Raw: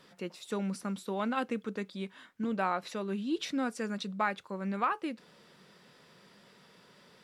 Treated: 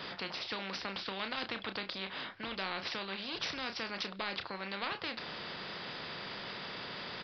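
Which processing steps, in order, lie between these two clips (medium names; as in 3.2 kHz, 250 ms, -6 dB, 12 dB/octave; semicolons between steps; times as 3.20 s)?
doubling 31 ms -11 dB; resampled via 11.025 kHz; spectrum-flattening compressor 4:1; trim -1.5 dB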